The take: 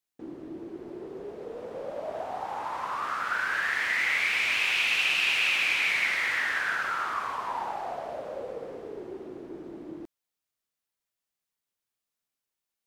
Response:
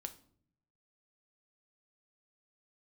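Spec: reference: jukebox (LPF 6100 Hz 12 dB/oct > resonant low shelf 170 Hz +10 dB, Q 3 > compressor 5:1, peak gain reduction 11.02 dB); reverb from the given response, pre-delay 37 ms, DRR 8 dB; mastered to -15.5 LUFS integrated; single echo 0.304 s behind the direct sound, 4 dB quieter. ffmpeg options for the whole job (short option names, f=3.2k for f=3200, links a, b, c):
-filter_complex "[0:a]aecho=1:1:304:0.631,asplit=2[a][b];[1:a]atrim=start_sample=2205,adelay=37[c];[b][c]afir=irnorm=-1:irlink=0,volume=-4.5dB[d];[a][d]amix=inputs=2:normalize=0,lowpass=6.1k,lowshelf=f=170:t=q:w=3:g=10,acompressor=threshold=-32dB:ratio=5,volume=19dB"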